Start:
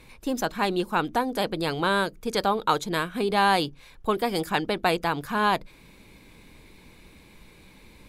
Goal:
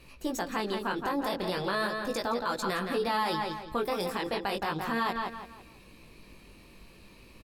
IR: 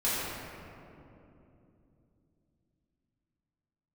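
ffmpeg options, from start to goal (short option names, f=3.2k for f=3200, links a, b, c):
-filter_complex "[0:a]flanger=delay=17:depth=6.5:speed=0.34,asetrate=48000,aresample=44100,asplit=2[a][b];[b]adelay=168,lowpass=f=4.6k:p=1,volume=-8dB,asplit=2[c][d];[d]adelay=168,lowpass=f=4.6k:p=1,volume=0.35,asplit=2[e][f];[f]adelay=168,lowpass=f=4.6k:p=1,volume=0.35,asplit=2[g][h];[h]adelay=168,lowpass=f=4.6k:p=1,volume=0.35[i];[c][e][g][i]amix=inputs=4:normalize=0[j];[a][j]amix=inputs=2:normalize=0,alimiter=limit=-20.5dB:level=0:latency=1:release=70"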